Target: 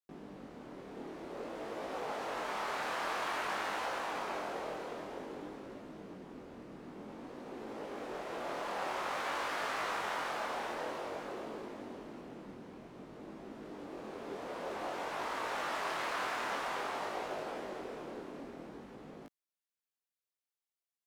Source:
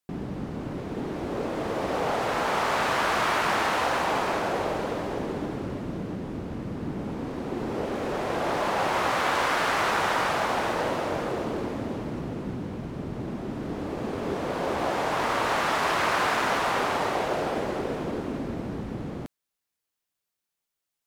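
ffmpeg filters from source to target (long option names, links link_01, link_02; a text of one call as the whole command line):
ffmpeg -i in.wav -filter_complex "[0:a]equalizer=frequency=96:width_type=o:width=2.1:gain=-9.5,acrossover=split=170|3000[link_01][link_02][link_03];[link_01]alimiter=level_in=21.5dB:limit=-24dB:level=0:latency=1:release=187,volume=-21.5dB[link_04];[link_04][link_02][link_03]amix=inputs=3:normalize=0,flanger=delay=18.5:depth=7.2:speed=0.52,volume=-8.5dB" out.wav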